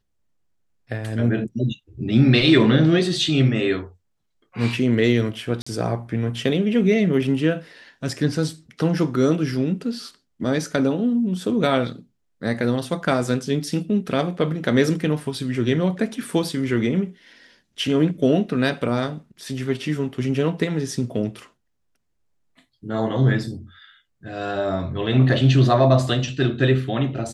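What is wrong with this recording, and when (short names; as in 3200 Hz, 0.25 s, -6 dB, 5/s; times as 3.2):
5.62–5.67 gap 45 ms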